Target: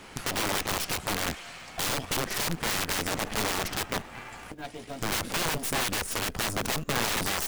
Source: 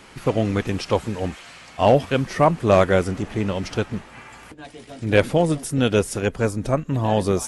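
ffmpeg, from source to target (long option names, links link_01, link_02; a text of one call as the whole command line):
ffmpeg -i in.wav -af "equalizer=frequency=730:width=6.4:gain=3.5,acompressor=threshold=-19dB:ratio=6,aeval=exprs='0.355*(cos(1*acos(clip(val(0)/0.355,-1,1)))-cos(1*PI/2))+0.141*(cos(2*acos(clip(val(0)/0.355,-1,1)))-cos(2*PI/2))+0.0141*(cos(3*acos(clip(val(0)/0.355,-1,1)))-cos(3*PI/2))+0.0794*(cos(8*acos(clip(val(0)/0.355,-1,1)))-cos(8*PI/2))':channel_layout=same,acrusher=bits=5:mode=log:mix=0:aa=0.000001,aeval=exprs='(mod(10*val(0)+1,2)-1)/10':channel_layout=same" out.wav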